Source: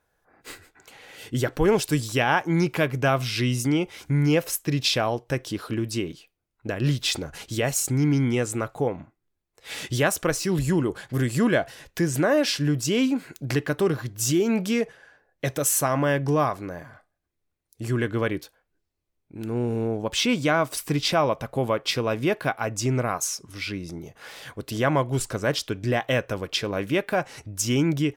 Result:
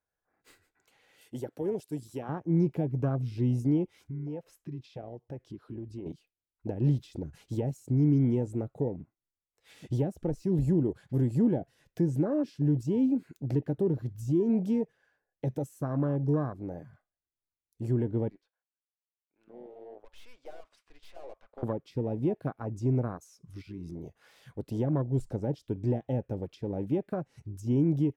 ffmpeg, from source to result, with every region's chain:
-filter_complex "[0:a]asettb=1/sr,asplit=3[a][b][c];[a]atrim=end=1.214[d];[b]atrim=start=1.21:end=2.29,asetpts=PTS-STARTPTS,afade=t=in:d=0.004:c=qsin,afade=t=out:st=1.076:d=0.004:c=qsin,highpass=f=600:p=1,equalizer=f=11k:t=o:w=0.95:g=8[e];[c]atrim=start=2.286[f];[d][e]acrossfade=d=0.004:c1=hsin:c2=qsin[g];[g][f]acrossfade=d=0.004:c1=qsin:c2=hsin,asettb=1/sr,asplit=3[h][i][j];[h]atrim=end=4.074[k];[i]atrim=start=4.07:end=6.06,asetpts=PTS-STARTPTS,afade=t=in:d=0.004:c=qsin,afade=t=out:st=1.986:d=0.004:c=qsin,lowpass=f=2.3k:p=1,acompressor=threshold=-39dB:ratio=2.5:attack=3.2:release=140:knee=1:detection=peak[l];[j]atrim=start=6.056[m];[k][l]acrossfade=d=0.004:c1=hsin:c2=qsin[n];[n][m]acrossfade=d=0.004:c1=qsin:c2=hsin,asettb=1/sr,asplit=3[o][p][q];[o]atrim=end=18.294[r];[p]atrim=start=18.29:end=21.63,asetpts=PTS-STARTPTS,afade=t=in:d=0.004:c=qsin,afade=t=out:st=3.336:d=0.004:c=qsin,highpass=730,lowpass=4.3k,highshelf=f=2.9k:g=-7.5,aeval=exprs='(tanh(63.1*val(0)+0.75)-tanh(0.75))/63.1':c=same[s];[q]atrim=start=21.626[t];[r][s]acrossfade=d=0.004:c1=hsin:c2=qsin[u];[u][t]acrossfade=d=0.004:c1=qsin:c2=hsin,asettb=1/sr,asplit=3[v][w][x];[v]atrim=end=23.614[y];[w]atrim=start=23.61:end=24.01,asetpts=PTS-STARTPTS,afade=t=in:d=0.004:c=qsin,afade=t=out:st=0.396:d=0.004:c=qsin,acompressor=threshold=-32dB:ratio=6:attack=3.2:release=140:knee=1:detection=peak,aeval=exprs='sgn(val(0))*max(abs(val(0))-0.00133,0)':c=same[z];[x]atrim=start=24.006[aa];[y][z]acrossfade=d=0.004:c1=hsin:c2=qsin[ab];[ab][aa]acrossfade=d=0.004:c1=qsin:c2=hsin,acrossover=split=400[ac][ad];[ad]acompressor=threshold=-35dB:ratio=10[ae];[ac][ae]amix=inputs=2:normalize=0,afwtdn=0.0251,volume=-2dB"

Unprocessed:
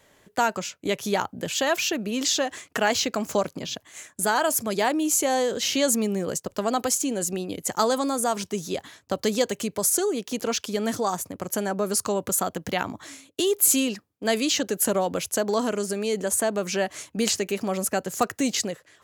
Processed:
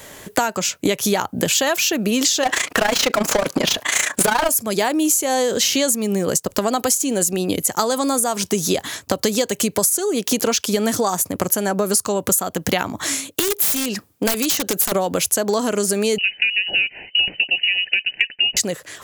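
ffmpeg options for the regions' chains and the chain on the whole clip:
-filter_complex "[0:a]asettb=1/sr,asplit=3[a][b][c];[a]atrim=end=2.434[d];[b]atrim=start=2.43:end=4.49,asetpts=PTS-STARTPTS,afade=t=in:d=0.004:c=qsin,afade=t=out:st=2.056:d=0.004:c=qsin,asplit=2[e][f];[f]highpass=f=720:p=1,volume=30dB,asoftclip=type=tanh:threshold=-9dB[g];[e][g]amix=inputs=2:normalize=0,lowpass=f=2.3k:p=1,volume=-6dB,tremolo=f=28:d=0.788[h];[c]atrim=start=4.486[i];[d][h]acrossfade=d=0.004:c1=hsin:c2=qsin[j];[j][i]acrossfade=d=0.004:c1=qsin:c2=hsin,asettb=1/sr,asplit=3[k][l][m];[k]atrim=end=12.874[n];[l]atrim=start=12.87:end=14.92,asetpts=PTS-STARTPTS,afade=t=in:d=0.004:c=qsin,afade=t=out:st=2.046:d=0.004:c=qsin,aeval=exprs='(mod(6.31*val(0)+1,2)-1)/6.31':c=same,acompressor=threshold=-34dB:ratio=2:attack=3.2:release=140:knee=1:detection=peak[o];[m]atrim=start=14.916[p];[n][o]acrossfade=d=0.004:c1=hsin:c2=qsin[q];[q][p]acrossfade=d=0.004:c1=qsin:c2=hsin,asettb=1/sr,asplit=3[r][s][t];[r]atrim=end=16.184[u];[s]atrim=start=16.18:end=18.57,asetpts=PTS-STARTPTS,afade=t=in:d=0.004:c=qsin,afade=t=out:st=2.386:d=0.004:c=qsin,asuperstop=centerf=1900:order=4:qfactor=1.4,lowpass=f=2.6k:t=q:w=0.5098,lowpass=f=2.6k:t=q:w=0.6013,lowpass=f=2.6k:t=q:w=0.9,lowpass=f=2.6k:t=q:w=2.563,afreqshift=-3100[v];[t]atrim=start=18.566[w];[u][v]acrossfade=d=0.004:c1=hsin:c2=qsin[x];[x][w]acrossfade=d=0.004:c1=qsin:c2=hsin,highshelf=f=6.9k:g=9,acompressor=threshold=-33dB:ratio=12,alimiter=level_in=18.5dB:limit=-1dB:release=50:level=0:latency=1,volume=-1dB"

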